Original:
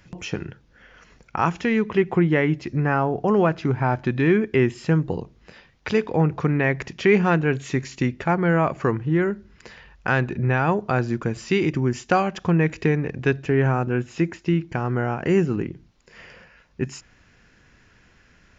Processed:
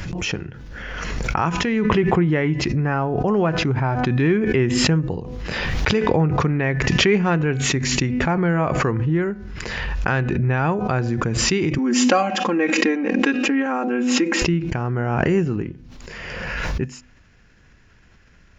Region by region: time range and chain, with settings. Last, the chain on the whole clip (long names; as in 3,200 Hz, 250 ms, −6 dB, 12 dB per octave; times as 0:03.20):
0:11.78–0:14.42: linear-phase brick-wall high-pass 190 Hz + comb filter 3.7 ms, depth 98%
whole clip: low-shelf EQ 100 Hz +8 dB; hum removal 249.7 Hz, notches 12; background raised ahead of every attack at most 22 dB per second; level −1.5 dB